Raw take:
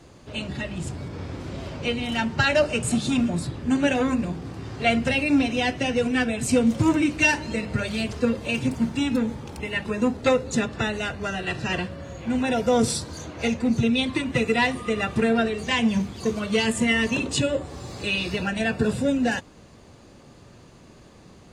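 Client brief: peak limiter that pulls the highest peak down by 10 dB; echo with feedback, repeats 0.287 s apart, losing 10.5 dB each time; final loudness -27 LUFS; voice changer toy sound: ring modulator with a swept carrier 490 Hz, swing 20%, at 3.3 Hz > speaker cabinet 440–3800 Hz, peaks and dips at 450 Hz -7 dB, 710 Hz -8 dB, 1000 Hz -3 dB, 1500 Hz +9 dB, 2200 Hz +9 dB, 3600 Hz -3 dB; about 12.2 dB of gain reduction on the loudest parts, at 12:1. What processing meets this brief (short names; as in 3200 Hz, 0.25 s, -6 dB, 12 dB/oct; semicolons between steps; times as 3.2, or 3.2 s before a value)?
compressor 12:1, threshold -28 dBFS; limiter -27.5 dBFS; feedback echo 0.287 s, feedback 30%, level -10.5 dB; ring modulator with a swept carrier 490 Hz, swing 20%, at 3.3 Hz; speaker cabinet 440–3800 Hz, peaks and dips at 450 Hz -7 dB, 710 Hz -8 dB, 1000 Hz -3 dB, 1500 Hz +9 dB, 2200 Hz +9 dB, 3600 Hz -3 dB; gain +11.5 dB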